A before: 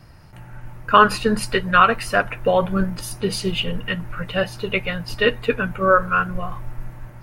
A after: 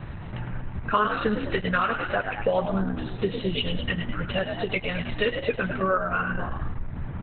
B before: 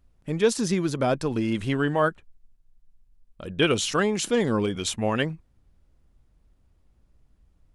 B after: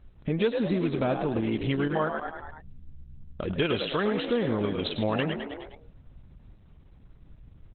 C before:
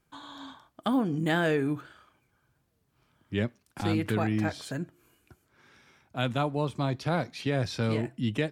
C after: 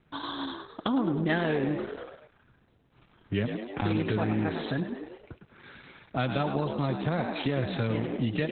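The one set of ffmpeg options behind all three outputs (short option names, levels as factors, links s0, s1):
-filter_complex "[0:a]asplit=2[s0][s1];[s1]asplit=5[s2][s3][s4][s5][s6];[s2]adelay=104,afreqshift=62,volume=0.398[s7];[s3]adelay=208,afreqshift=124,volume=0.18[s8];[s4]adelay=312,afreqshift=186,volume=0.0804[s9];[s5]adelay=416,afreqshift=248,volume=0.0363[s10];[s6]adelay=520,afreqshift=310,volume=0.0164[s11];[s7][s8][s9][s10][s11]amix=inputs=5:normalize=0[s12];[s0][s12]amix=inputs=2:normalize=0,acompressor=threshold=0.01:ratio=2.5,aresample=32000,aresample=44100,acontrast=67,volume=1.58" -ar 48000 -c:a libopus -b:a 8k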